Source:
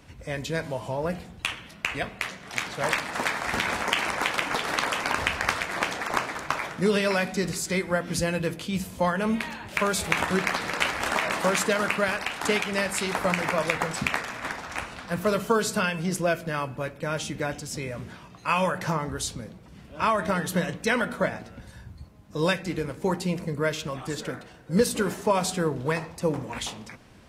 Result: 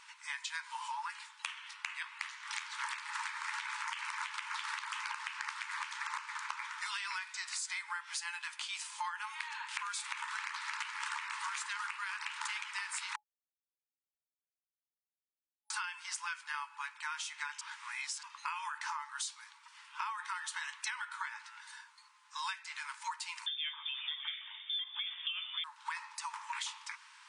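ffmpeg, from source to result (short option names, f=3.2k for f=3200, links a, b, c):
-filter_complex "[0:a]asettb=1/sr,asplit=3[a][b][c];[a]atrim=end=23.464[d];[b]atrim=start=23.46:end=25.64,asetpts=PTS-STARTPTS,afade=t=in:d=0.004:c=qsin,afade=t=out:st=2.176:d=0.004:c=qsin,lowpass=f=3.1k:t=q:w=0.5098,lowpass=f=3.1k:t=q:w=0.6013,lowpass=f=3.1k:t=q:w=0.9,lowpass=f=3.1k:t=q:w=2.563,afreqshift=-3700[e];[c]atrim=start=25.636[f];[d][e]acrossfade=d=0.004:c1=hsin:c2=qsin[g];[g][f]acrossfade=d=0.004:c1=qsin:c2=hsin,asplit=5[h][i][j][k][l];[h]atrim=end=13.16,asetpts=PTS-STARTPTS,afade=t=out:st=13.156:d=0.004:c=hsin[m];[i]atrim=start=13.16:end=15.7,asetpts=PTS-STARTPTS,volume=0[n];[j]atrim=start=15.7:end=17.612,asetpts=PTS-STARTPTS,afade=t=in:d=0.004:c=hsin[o];[k]atrim=start=17.608:end=18.232,asetpts=PTS-STARTPTS,areverse[p];[l]atrim=start=18.228[q];[m][n][o]concat=n=3:v=0:a=1[r];[r][p]acrossfade=d=0.004:c1=hsin:c2=hsin[s];[s][q]acrossfade=d=0.004:c1=hsin:c2=hsin,afftfilt=real='re*between(b*sr/4096,840,10000)':imag='im*between(b*sr/4096,840,10000)':win_size=4096:overlap=0.75,alimiter=limit=-16.5dB:level=0:latency=1:release=388,acompressor=threshold=-39dB:ratio=6,volume=2dB"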